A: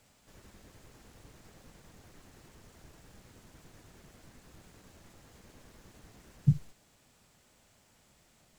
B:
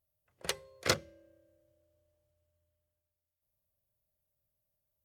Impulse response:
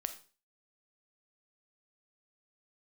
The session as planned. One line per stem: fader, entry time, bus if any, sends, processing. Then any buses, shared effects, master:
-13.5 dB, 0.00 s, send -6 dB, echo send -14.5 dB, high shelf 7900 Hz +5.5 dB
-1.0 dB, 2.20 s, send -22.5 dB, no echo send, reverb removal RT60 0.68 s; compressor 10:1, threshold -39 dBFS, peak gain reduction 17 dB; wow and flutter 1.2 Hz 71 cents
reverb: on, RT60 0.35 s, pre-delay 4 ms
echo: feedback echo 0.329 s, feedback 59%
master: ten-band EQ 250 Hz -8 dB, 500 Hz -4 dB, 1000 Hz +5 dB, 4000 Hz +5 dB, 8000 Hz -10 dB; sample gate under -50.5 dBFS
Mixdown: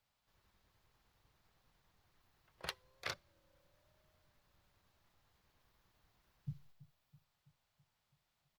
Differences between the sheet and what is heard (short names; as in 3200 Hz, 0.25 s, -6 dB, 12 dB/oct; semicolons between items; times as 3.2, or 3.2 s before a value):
stem A -13.5 dB -> -21.5 dB; master: missing sample gate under -50.5 dBFS